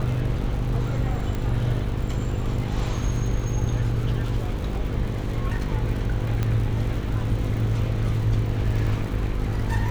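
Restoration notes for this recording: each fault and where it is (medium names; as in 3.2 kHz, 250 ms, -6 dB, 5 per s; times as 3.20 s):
buzz 50 Hz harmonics 10 -29 dBFS
crackle 97 per s -33 dBFS
1.35 s: pop -17 dBFS
6.43 s: pop -13 dBFS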